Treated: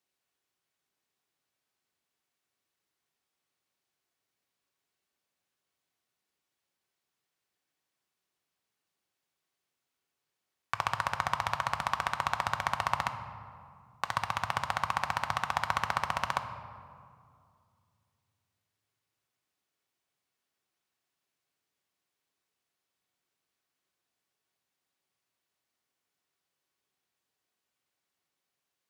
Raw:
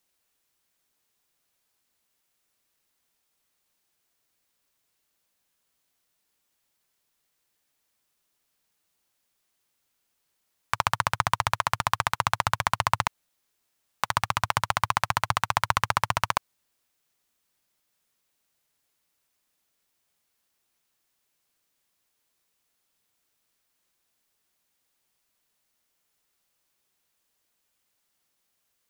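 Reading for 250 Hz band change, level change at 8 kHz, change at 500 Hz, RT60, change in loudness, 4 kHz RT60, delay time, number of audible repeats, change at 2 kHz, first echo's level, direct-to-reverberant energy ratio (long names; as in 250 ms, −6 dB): −5.0 dB, −10.5 dB, −5.0 dB, 2.4 s, −6.0 dB, 1.2 s, no echo audible, no echo audible, −5.5 dB, no echo audible, 6.0 dB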